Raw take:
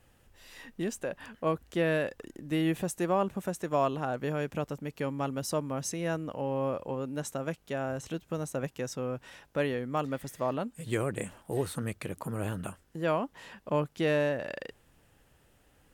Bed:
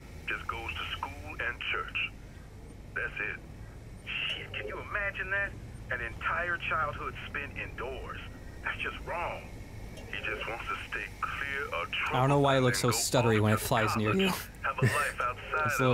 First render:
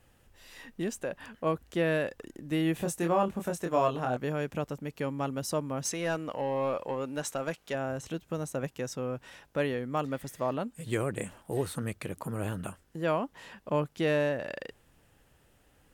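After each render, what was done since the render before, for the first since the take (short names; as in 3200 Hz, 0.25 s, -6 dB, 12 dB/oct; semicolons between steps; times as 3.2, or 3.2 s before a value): 2.78–4.17 doubler 24 ms -4 dB; 5.85–7.75 overdrive pedal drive 11 dB, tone 7300 Hz, clips at -20.5 dBFS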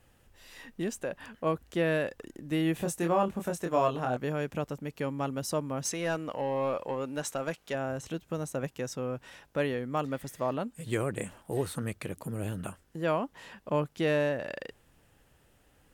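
12.16–12.58 bell 1100 Hz -8.5 dB 1.3 oct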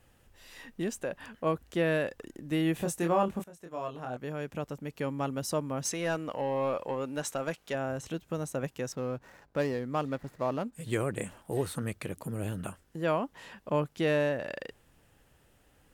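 3.44–5.11 fade in, from -21 dB; 8.92–10.73 median filter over 15 samples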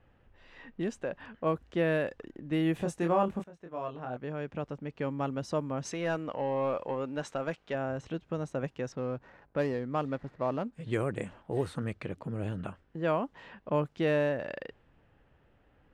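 low-pass opened by the level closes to 2700 Hz, open at -24 dBFS; high shelf 4500 Hz -10 dB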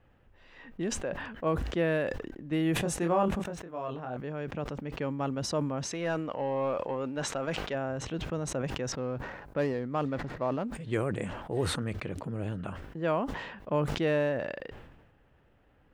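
sustainer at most 47 dB/s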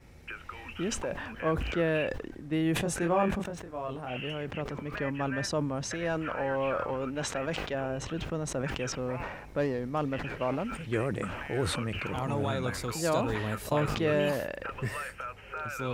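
add bed -7.5 dB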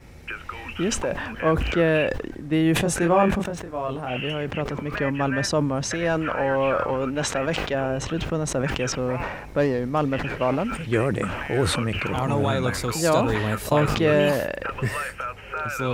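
gain +8 dB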